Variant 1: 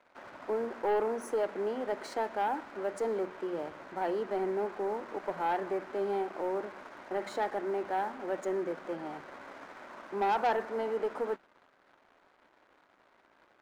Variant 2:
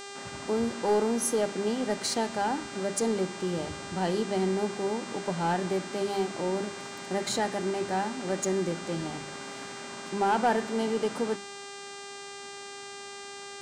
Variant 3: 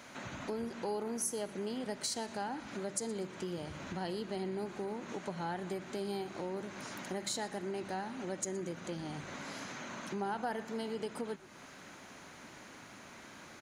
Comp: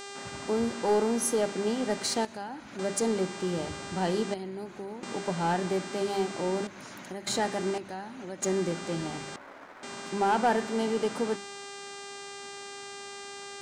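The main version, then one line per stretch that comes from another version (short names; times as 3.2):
2
2.25–2.79 from 3
4.34–5.03 from 3
6.67–7.27 from 3
7.78–8.42 from 3
9.36–9.83 from 1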